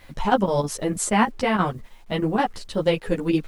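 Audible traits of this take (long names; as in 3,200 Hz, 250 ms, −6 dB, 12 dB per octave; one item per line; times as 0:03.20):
chopped level 6.3 Hz, depth 65%, duty 80%
a quantiser's noise floor 10 bits, dither none
a shimmering, thickened sound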